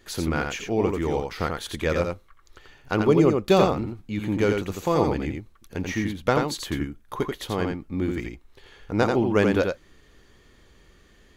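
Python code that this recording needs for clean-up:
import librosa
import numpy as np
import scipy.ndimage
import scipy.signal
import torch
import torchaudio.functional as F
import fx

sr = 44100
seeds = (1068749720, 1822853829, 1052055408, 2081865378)

y = fx.fix_declip(x, sr, threshold_db=-7.5)
y = fx.fix_echo_inverse(y, sr, delay_ms=86, level_db=-4.5)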